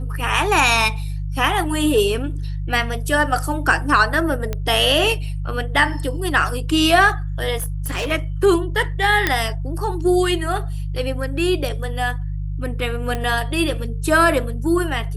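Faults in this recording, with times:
hum 50 Hz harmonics 3 -25 dBFS
4.53 pop -11 dBFS
7.58–8.12 clipped -20 dBFS
9.27 pop -2 dBFS
13.15 pop -12 dBFS

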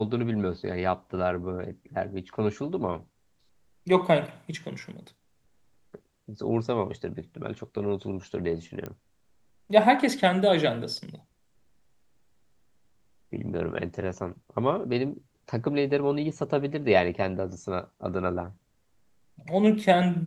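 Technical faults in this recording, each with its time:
8.86 pop -22 dBFS

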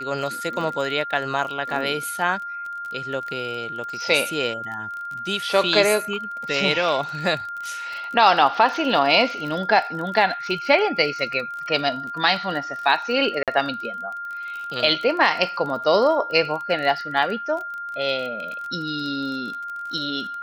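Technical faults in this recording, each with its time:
crackle 29/s -30 dBFS
tone 1400 Hz -29 dBFS
13.43–13.48 gap 47 ms

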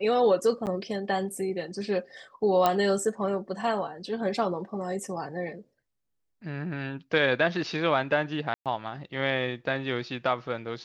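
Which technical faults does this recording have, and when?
0.66–0.67 gap 8.8 ms
2.66 pop -9 dBFS
8.54–8.66 gap 0.117 s

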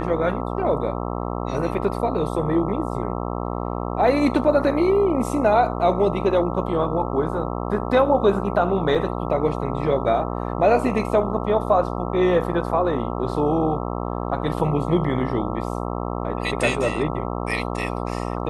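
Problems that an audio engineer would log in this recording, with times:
buzz 60 Hz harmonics 22 -27 dBFS
8.95 gap 4.7 ms

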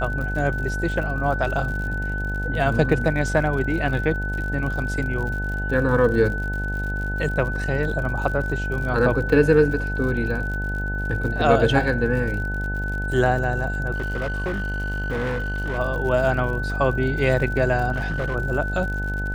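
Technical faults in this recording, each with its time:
buzz 50 Hz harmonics 18 -27 dBFS
crackle 71/s -31 dBFS
tone 1500 Hz -28 dBFS
13.94–15.79 clipped -21.5 dBFS
17.92–18.36 clipped -20.5 dBFS

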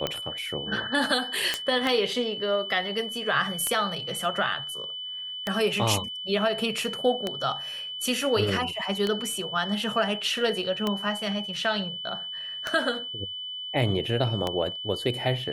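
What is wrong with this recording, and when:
tick 33 1/3 rpm -12 dBFS
tone 3000 Hz -33 dBFS
1.54 pop -11 dBFS

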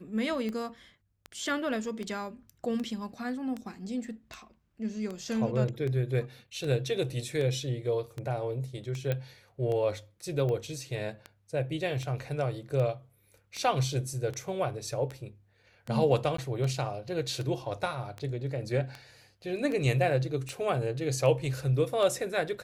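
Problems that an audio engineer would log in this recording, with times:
tick 78 rpm -24 dBFS
0.69 gap 2.7 ms
9.12 pop -18 dBFS
16.37–16.38 gap 14 ms

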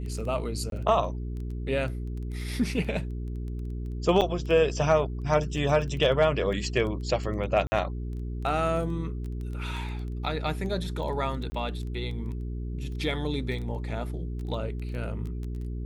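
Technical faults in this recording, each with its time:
crackle 10/s -34 dBFS
hum 60 Hz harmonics 7 -33 dBFS
0.7–0.72 gap 22 ms
4.21–4.22 gap 6.6 ms
7.67–7.72 gap 50 ms
11.5–11.52 gap 20 ms

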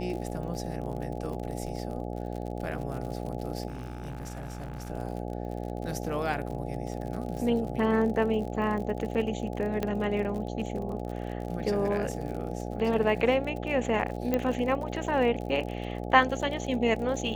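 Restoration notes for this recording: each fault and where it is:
buzz 60 Hz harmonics 14 -35 dBFS
crackle 50/s -36 dBFS
3.68–4.9 clipped -33 dBFS
9.83 pop -17 dBFS
14.34 pop -14 dBFS

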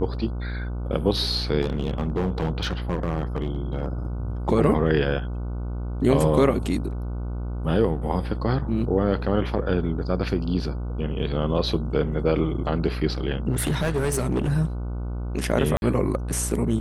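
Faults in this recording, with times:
buzz 60 Hz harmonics 25 -29 dBFS
1.61–3.86 clipped -19.5 dBFS
13.52–14.51 clipped -19 dBFS
15.77–15.82 gap 51 ms

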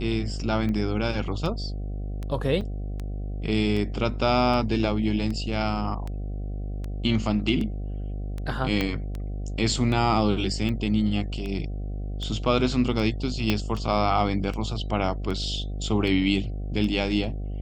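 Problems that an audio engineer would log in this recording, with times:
buzz 50 Hz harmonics 15 -31 dBFS
tick 78 rpm -21 dBFS
2.61 gap 4.5 ms
8.81 pop -12 dBFS
13.5 pop -9 dBFS

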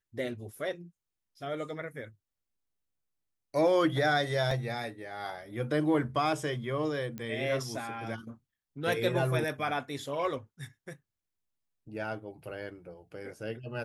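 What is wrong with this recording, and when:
4.51 gap 2.9 ms
7.18 pop -25 dBFS

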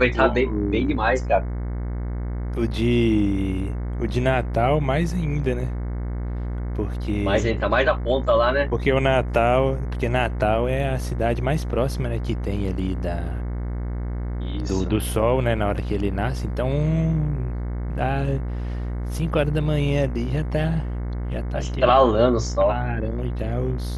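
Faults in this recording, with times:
buzz 60 Hz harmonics 37 -27 dBFS

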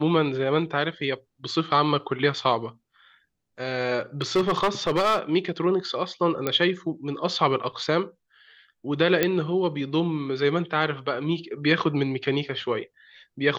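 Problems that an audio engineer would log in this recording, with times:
4.21–5.19 clipped -17 dBFS
6.47 pop -10 dBFS
9.23 pop -6 dBFS

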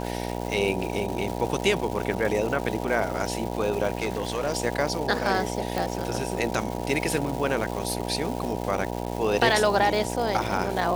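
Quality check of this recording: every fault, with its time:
buzz 60 Hz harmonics 16 -31 dBFS
crackle 510/s -31 dBFS
3.95–4.53 clipped -21.5 dBFS
5.78 pop

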